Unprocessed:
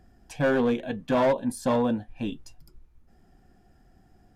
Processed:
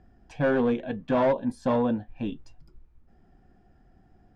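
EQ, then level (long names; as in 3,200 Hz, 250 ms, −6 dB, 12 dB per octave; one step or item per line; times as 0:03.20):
high-frequency loss of the air 75 metres
high-shelf EQ 3,600 Hz −7.5 dB
0.0 dB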